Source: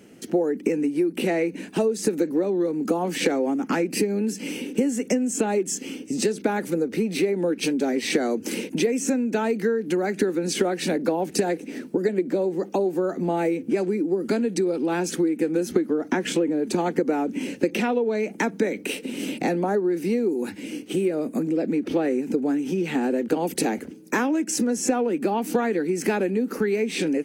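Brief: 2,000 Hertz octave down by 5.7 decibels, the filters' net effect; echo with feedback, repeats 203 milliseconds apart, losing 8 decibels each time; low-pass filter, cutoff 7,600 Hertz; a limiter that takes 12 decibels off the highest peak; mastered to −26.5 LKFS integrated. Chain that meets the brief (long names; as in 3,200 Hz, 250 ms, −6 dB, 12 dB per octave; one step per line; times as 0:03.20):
low-pass filter 7,600 Hz
parametric band 2,000 Hz −7.5 dB
brickwall limiter −19 dBFS
repeating echo 203 ms, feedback 40%, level −8 dB
level +0.5 dB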